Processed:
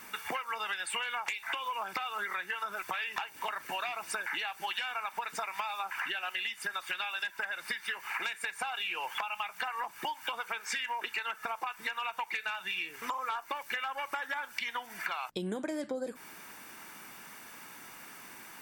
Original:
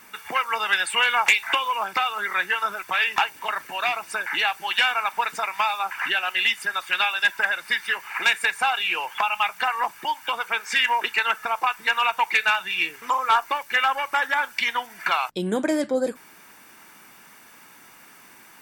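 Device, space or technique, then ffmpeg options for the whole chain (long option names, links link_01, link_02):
serial compression, peaks first: -af "acompressor=threshold=-28dB:ratio=6,acompressor=threshold=-34dB:ratio=2.5"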